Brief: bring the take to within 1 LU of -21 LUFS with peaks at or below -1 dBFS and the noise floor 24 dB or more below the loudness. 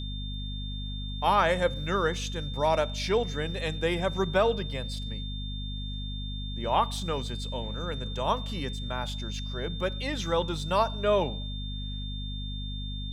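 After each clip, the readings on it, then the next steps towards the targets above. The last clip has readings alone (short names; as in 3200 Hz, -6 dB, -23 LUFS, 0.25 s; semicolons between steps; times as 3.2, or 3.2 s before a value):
hum 50 Hz; harmonics up to 250 Hz; hum level -33 dBFS; steady tone 3600 Hz; tone level -40 dBFS; loudness -30.0 LUFS; peak -11.5 dBFS; loudness target -21.0 LUFS
-> notches 50/100/150/200/250 Hz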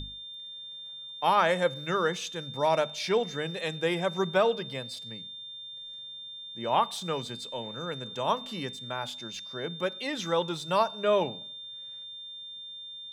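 hum none; steady tone 3600 Hz; tone level -40 dBFS
-> notch 3600 Hz, Q 30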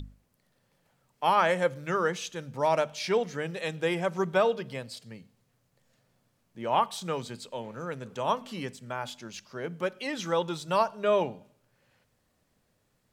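steady tone none; loudness -29.5 LUFS; peak -12.5 dBFS; loudness target -21.0 LUFS
-> gain +8.5 dB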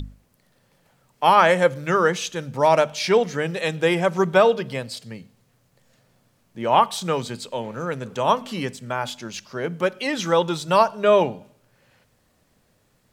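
loudness -21.0 LUFS; peak -4.0 dBFS; noise floor -64 dBFS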